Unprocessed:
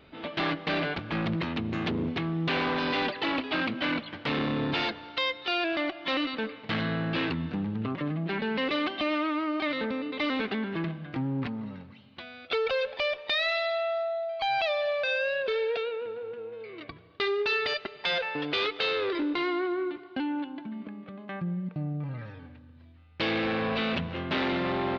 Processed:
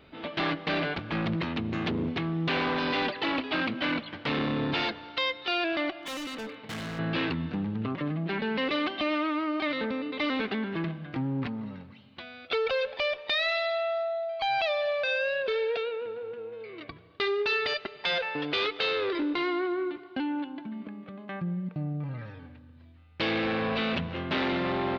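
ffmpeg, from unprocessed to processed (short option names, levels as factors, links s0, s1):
-filter_complex "[0:a]asettb=1/sr,asplit=3[s0][s1][s2];[s0]atrim=end=6.004[s3];[s1]atrim=start=6:end=6.99,asetpts=PTS-STARTPTS,afade=t=in:d=0.004:c=qsin,afade=t=out:st=0.986:d=0.004:c=qsin,volume=53.1,asoftclip=hard,volume=0.0188[s4];[s2]atrim=start=6.986[s5];[s3][s4]acrossfade=d=0.004:c1=hsin:c2=qsin[s6];[s6][s5]acrossfade=d=0.004:c1=qsin:c2=hsin"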